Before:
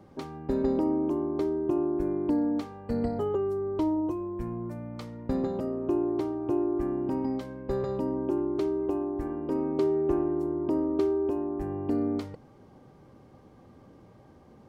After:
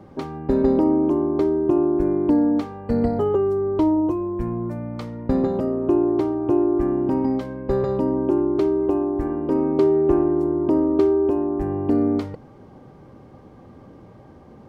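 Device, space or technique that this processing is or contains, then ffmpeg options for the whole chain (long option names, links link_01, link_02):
behind a face mask: -af "highshelf=frequency=3500:gain=-7.5,volume=8.5dB"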